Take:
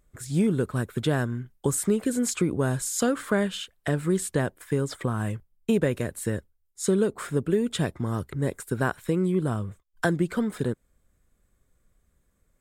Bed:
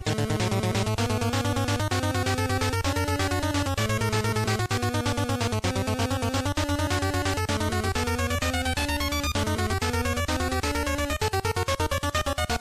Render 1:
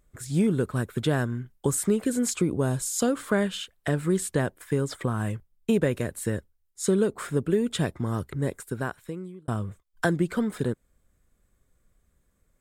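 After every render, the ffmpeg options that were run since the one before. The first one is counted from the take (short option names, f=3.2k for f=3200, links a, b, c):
-filter_complex "[0:a]asettb=1/sr,asplit=3[a][b][c];[a]atrim=end=2.344[d];[b]atrim=start=2.34:end=3.3,asetpts=PTS-STARTPTS,afade=t=in:d=0.004:c=qsin,afade=t=out:st=0.956:d=0.004:c=qsin,equalizer=f=1.7k:w=1.5:g=-5.5[e];[c]atrim=start=3.296[f];[d][e]acrossfade=d=0.004:c1=hsin:c2=qsin[g];[g][f]acrossfade=d=0.004:c1=qsin:c2=hsin,asplit=2[h][i];[h]atrim=end=9.48,asetpts=PTS-STARTPTS,afade=t=out:st=8.34:d=1.14[j];[i]atrim=start=9.48,asetpts=PTS-STARTPTS,afade=t=in:d=0.004:c=hsin[k];[j][k]concat=n=2:v=0:a=1"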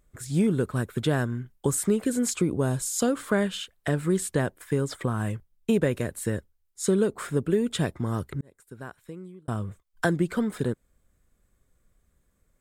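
-filter_complex "[0:a]asplit=2[a][b];[a]atrim=end=8.41,asetpts=PTS-STARTPTS,afade=t=out:st=8.406:d=0.004:c=hsin[c];[b]atrim=start=8.41,asetpts=PTS-STARTPTS,afade=t=in:d=1.29[d];[c][d]concat=n=2:v=0:a=1"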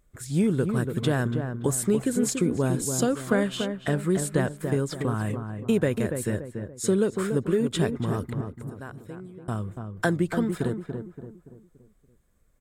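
-filter_complex "[0:a]asplit=2[a][b];[b]adelay=286,lowpass=f=1.3k:p=1,volume=-6dB,asplit=2[c][d];[d]adelay=286,lowpass=f=1.3k:p=1,volume=0.44,asplit=2[e][f];[f]adelay=286,lowpass=f=1.3k:p=1,volume=0.44,asplit=2[g][h];[h]adelay=286,lowpass=f=1.3k:p=1,volume=0.44,asplit=2[i][j];[j]adelay=286,lowpass=f=1.3k:p=1,volume=0.44[k];[a][c][e][g][i][k]amix=inputs=6:normalize=0"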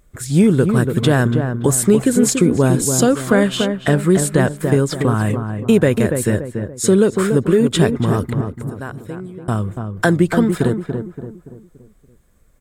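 -af "volume=10.5dB,alimiter=limit=-3dB:level=0:latency=1"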